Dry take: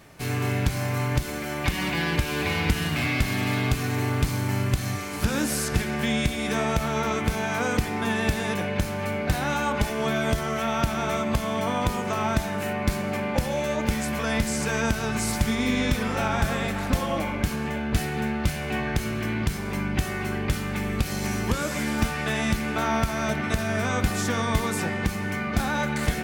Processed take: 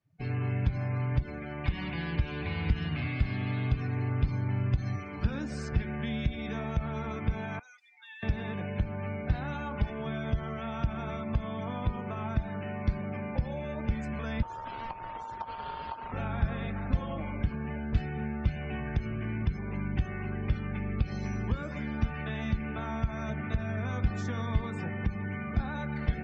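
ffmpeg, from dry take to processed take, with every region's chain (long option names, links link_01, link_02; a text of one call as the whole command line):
ffmpeg -i in.wav -filter_complex "[0:a]asettb=1/sr,asplit=3[link_01][link_02][link_03];[link_01]atrim=end=7.594[link_04];[link_02]atrim=start=7.59:end=8.23,asetpts=PTS-STARTPTS,afade=type=in:duration=0.004:curve=qsin,afade=type=out:start_time=0.636:duration=0.004:curve=qsin,highpass=frequency=530:poles=1,aderivative,asoftclip=type=hard:threshold=-33.5dB[link_05];[link_03]atrim=start=8.226[link_06];[link_04][link_05]acrossfade=duration=0.004:curve1=hsin:curve2=qsin[link_07];[link_07][link_06]acrossfade=duration=0.004:curve1=qsin:curve2=hsin,asettb=1/sr,asplit=3[link_08][link_09][link_10];[link_08]atrim=end=14.424[link_11];[link_09]atrim=start=14.42:end=16.12,asetpts=PTS-STARTPTS,afade=type=in:duration=0.004:curve=qsin,afade=type=out:start_time=1.696:duration=0.004:curve=qsin,aeval=exprs='val(0)+0.0158*(sin(2*PI*50*n/s)+sin(2*PI*2*50*n/s)/2+sin(2*PI*3*50*n/s)/3+sin(2*PI*4*50*n/s)/4+sin(2*PI*5*50*n/s)/5)':channel_layout=same,aeval=exprs='abs(val(0))':channel_layout=same,aeval=exprs='val(0)*sin(2*PI*910*n/s)':channel_layout=same[link_12];[link_10]atrim=start=16.116[link_13];[link_11][link_12]acrossfade=duration=0.004:curve1=hsin:curve2=qsin[link_14];[link_14][link_13]acrossfade=duration=0.004:curve1=qsin:curve2=hsin,lowpass=5900,afftdn=noise_reduction=34:noise_floor=-36,acrossover=split=170[link_15][link_16];[link_16]acompressor=threshold=-42dB:ratio=2[link_17];[link_15][link_17]amix=inputs=2:normalize=0,volume=-2dB" out.wav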